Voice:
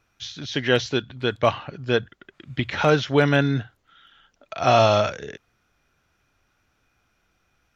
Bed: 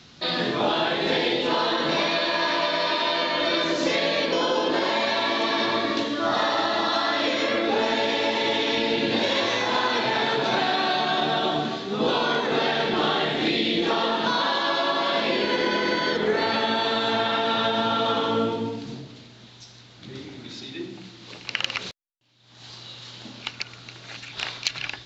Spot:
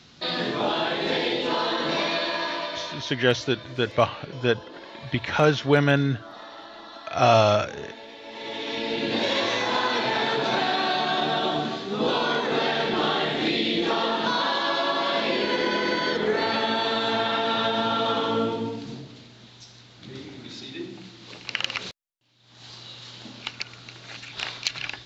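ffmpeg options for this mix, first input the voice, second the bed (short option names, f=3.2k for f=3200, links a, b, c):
-filter_complex "[0:a]adelay=2550,volume=-1dB[a];[1:a]volume=16dB,afade=t=out:st=2.17:d=0.95:silence=0.141254,afade=t=in:st=8.24:d=1.05:silence=0.125893[b];[a][b]amix=inputs=2:normalize=0"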